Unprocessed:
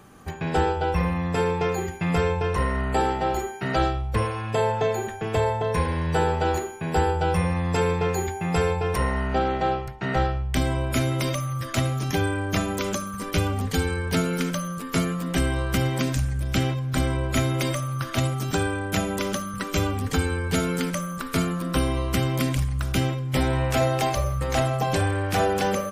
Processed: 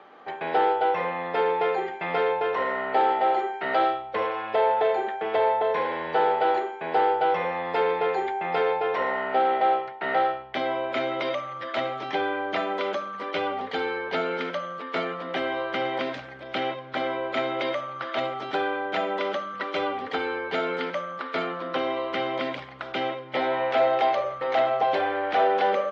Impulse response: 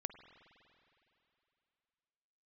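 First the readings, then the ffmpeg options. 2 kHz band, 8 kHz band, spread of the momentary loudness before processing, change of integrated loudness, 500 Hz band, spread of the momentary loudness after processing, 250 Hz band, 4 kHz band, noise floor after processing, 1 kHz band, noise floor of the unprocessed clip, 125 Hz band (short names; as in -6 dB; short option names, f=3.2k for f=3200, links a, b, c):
+0.5 dB, under -25 dB, 4 LU, -1.0 dB, +1.5 dB, 8 LU, -9.0 dB, -2.5 dB, -39 dBFS, +3.5 dB, -34 dBFS, -23.5 dB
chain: -filter_complex "[0:a]asplit=2[a][b];[b]highpass=f=720:p=1,volume=14dB,asoftclip=type=tanh:threshold=-11dB[c];[a][c]amix=inputs=2:normalize=0,lowpass=f=1.7k:p=1,volume=-6dB,highpass=480,equalizer=f=1.1k:t=q:w=4:g=-7,equalizer=f=1.6k:t=q:w=4:g=-6,equalizer=f=2.6k:t=q:w=4:g=-7,lowpass=f=3.5k:w=0.5412,lowpass=f=3.5k:w=1.3066,volume=2dB"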